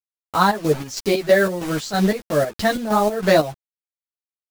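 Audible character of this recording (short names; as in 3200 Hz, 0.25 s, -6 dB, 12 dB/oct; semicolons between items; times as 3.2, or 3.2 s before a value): a quantiser's noise floor 6-bit, dither none; chopped level 3.1 Hz, depth 65%, duty 55%; a shimmering, thickened sound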